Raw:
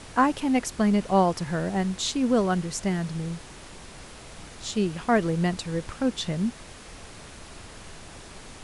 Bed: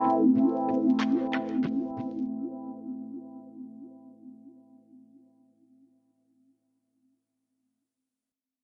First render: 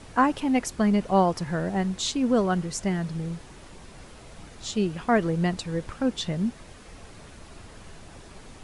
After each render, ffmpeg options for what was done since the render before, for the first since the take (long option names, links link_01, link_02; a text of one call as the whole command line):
ffmpeg -i in.wav -af "afftdn=noise_reduction=6:noise_floor=-45" out.wav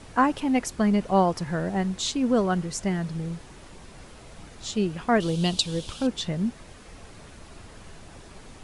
ffmpeg -i in.wav -filter_complex "[0:a]asettb=1/sr,asplit=3[link_01][link_02][link_03];[link_01]atrim=end=5.204[link_04];[link_02]atrim=start=5.2:end=6.07,asetpts=PTS-STARTPTS,afade=type=in:duration=0.004:curve=qsin,afade=type=out:start_time=0.866:duration=0.004:curve=qsin,highshelf=frequency=2500:width_type=q:width=3:gain=9[link_05];[link_03]atrim=start=6.066[link_06];[link_04][link_05]acrossfade=duration=0.004:curve1=hsin:curve2=qsin[link_07];[link_07][link_06]acrossfade=duration=0.004:curve1=qsin:curve2=hsin" out.wav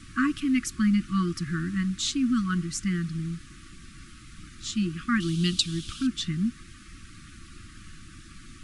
ffmpeg -i in.wav -af "afftfilt=real='re*(1-between(b*sr/4096,360,1100))':imag='im*(1-between(b*sr/4096,360,1100))':win_size=4096:overlap=0.75,equalizer=frequency=420:width_type=o:width=0.34:gain=-4.5" out.wav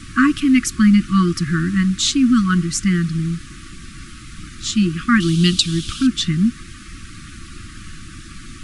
ffmpeg -i in.wav -af "volume=10.5dB,alimiter=limit=-2dB:level=0:latency=1" out.wav